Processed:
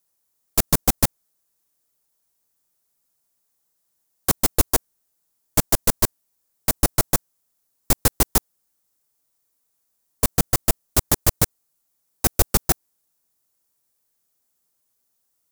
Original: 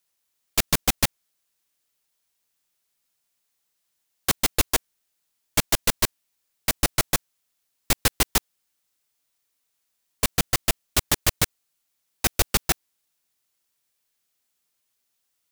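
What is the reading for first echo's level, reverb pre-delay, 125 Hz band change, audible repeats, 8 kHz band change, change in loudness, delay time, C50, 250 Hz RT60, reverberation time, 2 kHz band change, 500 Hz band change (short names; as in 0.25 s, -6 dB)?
none, none, +5.0 dB, none, +2.0 dB, +2.5 dB, none, none, none, none, -3.5 dB, +4.0 dB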